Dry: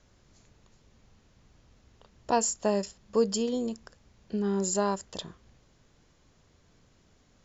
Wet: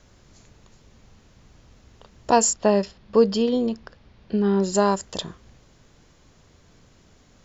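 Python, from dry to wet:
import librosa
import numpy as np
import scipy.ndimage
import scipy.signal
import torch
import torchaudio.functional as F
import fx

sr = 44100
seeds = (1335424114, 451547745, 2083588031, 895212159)

y = fx.lowpass(x, sr, hz=4600.0, slope=24, at=(2.53, 4.74))
y = y * librosa.db_to_amplitude(8.0)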